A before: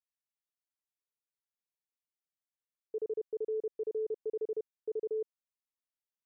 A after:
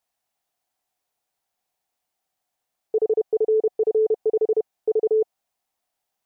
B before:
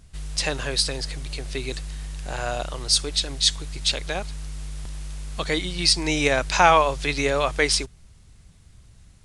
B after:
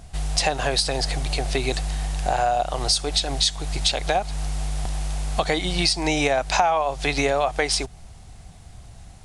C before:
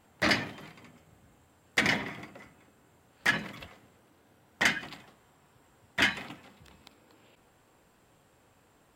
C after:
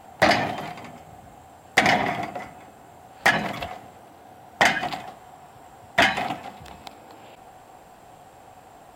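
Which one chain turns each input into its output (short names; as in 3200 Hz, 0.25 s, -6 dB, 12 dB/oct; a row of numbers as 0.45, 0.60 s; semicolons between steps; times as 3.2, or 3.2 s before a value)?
bell 740 Hz +14.5 dB 0.48 oct; compressor 8:1, threshold -25 dBFS; match loudness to -23 LUFS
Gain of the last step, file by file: +13.0, +7.0, +11.0 dB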